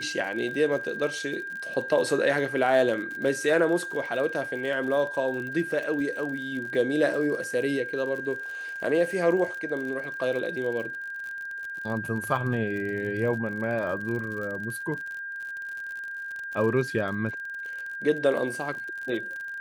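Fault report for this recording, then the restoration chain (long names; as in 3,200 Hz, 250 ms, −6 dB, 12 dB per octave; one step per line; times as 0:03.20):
surface crackle 53 per second −34 dBFS
whistle 1,600 Hz −33 dBFS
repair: click removal
notch filter 1,600 Hz, Q 30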